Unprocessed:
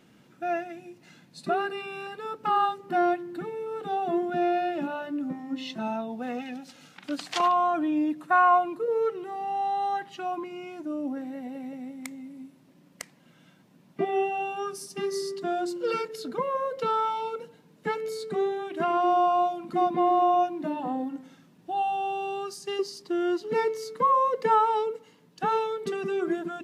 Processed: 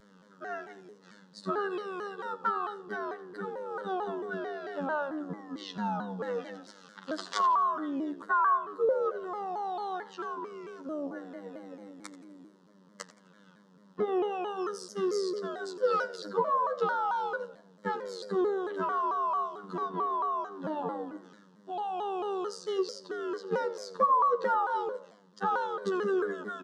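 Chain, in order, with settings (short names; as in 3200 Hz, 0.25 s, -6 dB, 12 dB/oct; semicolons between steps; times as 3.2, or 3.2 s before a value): low shelf 230 Hz -9.5 dB; compressor 5:1, threshold -27 dBFS, peak gain reduction 9.5 dB; robotiser 97.2 Hz; air absorption 110 m; fixed phaser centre 480 Hz, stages 8; frequency-shifting echo 85 ms, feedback 34%, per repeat +71 Hz, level -16.5 dB; shaped vibrato saw down 4.5 Hz, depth 160 cents; gain +7.5 dB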